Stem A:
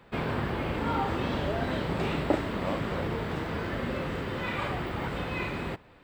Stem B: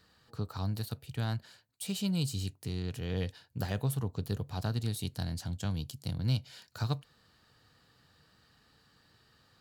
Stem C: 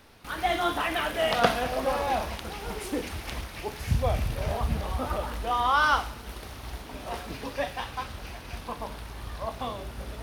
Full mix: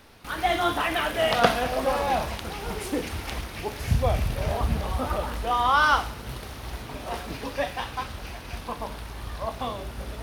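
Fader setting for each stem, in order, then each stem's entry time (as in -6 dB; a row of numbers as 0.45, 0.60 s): -17.0, -13.0, +2.5 dB; 2.30, 0.00, 0.00 s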